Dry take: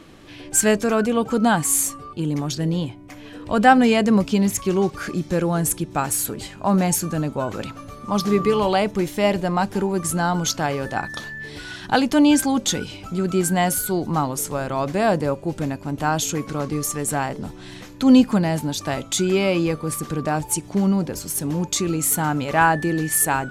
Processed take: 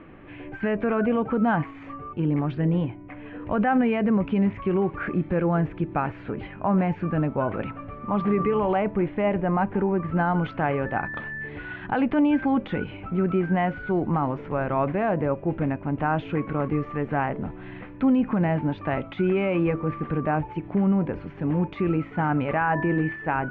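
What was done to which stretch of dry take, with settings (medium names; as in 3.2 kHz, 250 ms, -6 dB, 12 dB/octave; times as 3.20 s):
8.51–10.16 s: treble shelf 3.9 kHz -8.5 dB
whole clip: de-hum 327.7 Hz, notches 3; peak limiter -14 dBFS; steep low-pass 2.5 kHz 36 dB/octave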